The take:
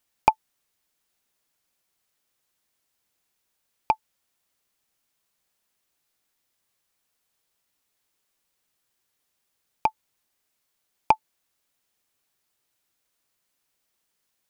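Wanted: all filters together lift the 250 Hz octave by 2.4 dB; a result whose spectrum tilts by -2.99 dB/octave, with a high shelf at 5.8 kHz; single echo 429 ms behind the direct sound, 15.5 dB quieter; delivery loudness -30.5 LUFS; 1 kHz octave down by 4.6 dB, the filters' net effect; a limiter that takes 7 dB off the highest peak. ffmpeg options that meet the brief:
-af "equalizer=f=250:t=o:g=3.5,equalizer=f=1000:t=o:g=-5.5,highshelf=f=5800:g=-5.5,alimiter=limit=0.237:level=0:latency=1,aecho=1:1:429:0.168,volume=2.82"

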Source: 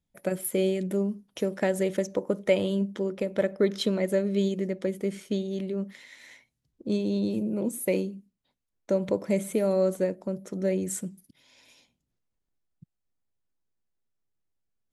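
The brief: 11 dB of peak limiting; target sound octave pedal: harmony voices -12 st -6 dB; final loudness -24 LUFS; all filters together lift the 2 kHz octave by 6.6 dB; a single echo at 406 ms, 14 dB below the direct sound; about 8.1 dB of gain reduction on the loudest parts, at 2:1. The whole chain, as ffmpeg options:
-filter_complex "[0:a]equalizer=f=2000:t=o:g=7.5,acompressor=threshold=0.0224:ratio=2,alimiter=level_in=1.5:limit=0.0631:level=0:latency=1,volume=0.668,aecho=1:1:406:0.2,asplit=2[s0][s1];[s1]asetrate=22050,aresample=44100,atempo=2,volume=0.501[s2];[s0][s2]amix=inputs=2:normalize=0,volume=4.22"

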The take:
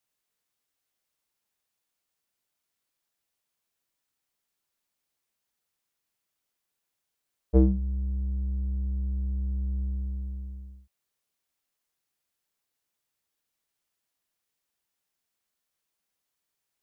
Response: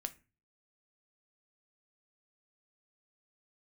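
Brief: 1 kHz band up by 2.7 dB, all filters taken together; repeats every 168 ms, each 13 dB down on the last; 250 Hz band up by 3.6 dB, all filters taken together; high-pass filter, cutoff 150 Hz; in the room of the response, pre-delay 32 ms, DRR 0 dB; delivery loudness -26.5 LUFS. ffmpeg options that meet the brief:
-filter_complex "[0:a]highpass=150,equalizer=f=250:t=o:g=6.5,equalizer=f=1000:t=o:g=3.5,aecho=1:1:168|336|504:0.224|0.0493|0.0108,asplit=2[s0][s1];[1:a]atrim=start_sample=2205,adelay=32[s2];[s1][s2]afir=irnorm=-1:irlink=0,volume=1.26[s3];[s0][s3]amix=inputs=2:normalize=0,volume=1.19"

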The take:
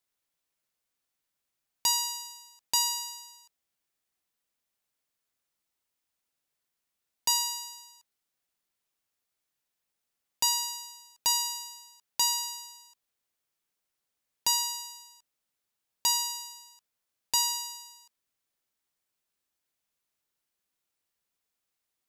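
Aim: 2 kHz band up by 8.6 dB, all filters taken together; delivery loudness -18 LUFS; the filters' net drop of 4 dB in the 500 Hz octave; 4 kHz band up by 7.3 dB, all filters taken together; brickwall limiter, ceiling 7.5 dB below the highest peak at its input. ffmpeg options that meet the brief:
-af "equalizer=f=500:t=o:g=-6,equalizer=f=2000:t=o:g=8,equalizer=f=4000:t=o:g=7.5,volume=2.51,alimiter=limit=0.422:level=0:latency=1"

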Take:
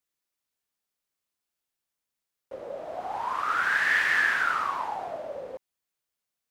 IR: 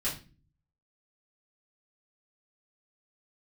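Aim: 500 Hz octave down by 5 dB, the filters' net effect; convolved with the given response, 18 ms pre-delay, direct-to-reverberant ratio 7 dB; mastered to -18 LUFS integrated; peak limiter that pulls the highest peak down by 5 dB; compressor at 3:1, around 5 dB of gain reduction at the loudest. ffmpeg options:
-filter_complex "[0:a]equalizer=f=500:t=o:g=-6.5,acompressor=threshold=0.0447:ratio=3,alimiter=limit=0.0668:level=0:latency=1,asplit=2[s0][s1];[1:a]atrim=start_sample=2205,adelay=18[s2];[s1][s2]afir=irnorm=-1:irlink=0,volume=0.237[s3];[s0][s3]amix=inputs=2:normalize=0,volume=5.01"

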